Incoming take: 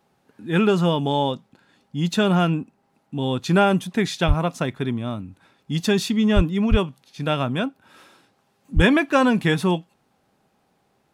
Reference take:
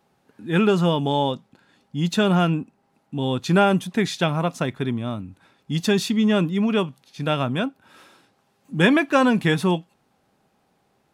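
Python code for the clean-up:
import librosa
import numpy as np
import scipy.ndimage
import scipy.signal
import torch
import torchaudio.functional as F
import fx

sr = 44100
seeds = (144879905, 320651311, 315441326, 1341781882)

y = fx.fix_deplosive(x, sr, at_s=(4.27, 6.35, 6.7, 8.75))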